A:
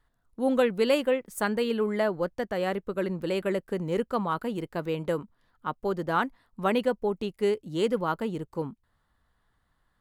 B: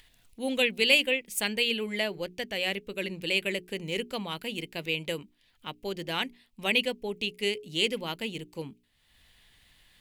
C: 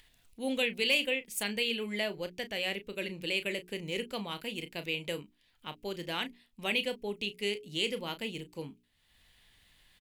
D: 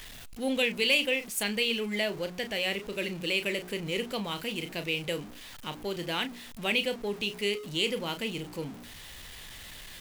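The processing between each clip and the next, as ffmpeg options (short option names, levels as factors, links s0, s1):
-af "highshelf=f=1800:t=q:w=3:g=11.5,bandreject=f=60:t=h:w=6,bandreject=f=120:t=h:w=6,bandreject=f=180:t=h:w=6,bandreject=f=240:t=h:w=6,bandreject=f=300:t=h:w=6,bandreject=f=360:t=h:w=6,bandreject=f=420:t=h:w=6,acompressor=mode=upward:threshold=0.00708:ratio=2.5,volume=0.562"
-filter_complex "[0:a]asplit=2[s0][s1];[s1]alimiter=limit=0.1:level=0:latency=1,volume=0.708[s2];[s0][s2]amix=inputs=2:normalize=0,asoftclip=type=hard:threshold=0.335,asplit=2[s3][s4];[s4]adelay=34,volume=0.266[s5];[s3][s5]amix=inputs=2:normalize=0,volume=0.398"
-af "aeval=exprs='val(0)+0.5*0.00708*sgn(val(0))':c=same,volume=1.33"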